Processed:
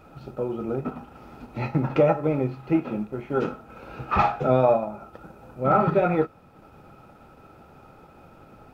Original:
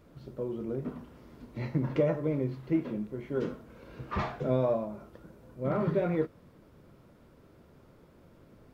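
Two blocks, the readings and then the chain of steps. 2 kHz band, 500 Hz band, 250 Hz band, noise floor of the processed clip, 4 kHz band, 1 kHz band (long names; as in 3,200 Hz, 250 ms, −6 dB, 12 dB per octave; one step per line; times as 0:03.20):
+9.5 dB, +7.5 dB, +5.5 dB, −52 dBFS, +6.5 dB, +15.0 dB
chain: hollow resonant body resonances 810/1,300/2,500 Hz, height 17 dB, ringing for 35 ms
transient designer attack 0 dB, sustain −4 dB
level +5.5 dB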